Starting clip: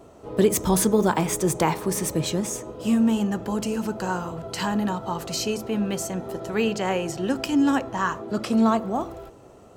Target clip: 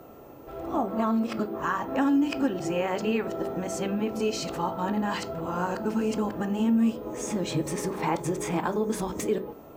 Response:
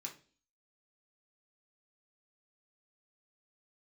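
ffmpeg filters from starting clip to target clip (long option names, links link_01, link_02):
-filter_complex "[0:a]areverse,acompressor=threshold=-25dB:ratio=6,aeval=exprs='val(0)+0.00562*sin(2*PI*15000*n/s)':channel_layout=same,aemphasis=mode=reproduction:type=75kf,asplit=2[link_01][link_02];[1:a]atrim=start_sample=2205[link_03];[link_02][link_03]afir=irnorm=-1:irlink=0,volume=0dB[link_04];[link_01][link_04]amix=inputs=2:normalize=0"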